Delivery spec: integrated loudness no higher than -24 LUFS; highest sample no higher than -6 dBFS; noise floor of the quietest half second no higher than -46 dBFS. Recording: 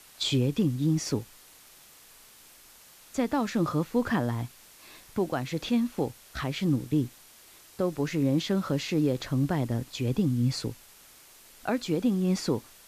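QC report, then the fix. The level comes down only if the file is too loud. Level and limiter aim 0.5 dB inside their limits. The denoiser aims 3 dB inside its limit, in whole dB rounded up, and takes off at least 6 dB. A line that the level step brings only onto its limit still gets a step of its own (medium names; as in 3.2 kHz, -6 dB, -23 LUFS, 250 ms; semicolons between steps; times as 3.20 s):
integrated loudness -29.0 LUFS: pass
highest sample -15.5 dBFS: pass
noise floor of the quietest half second -54 dBFS: pass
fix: none needed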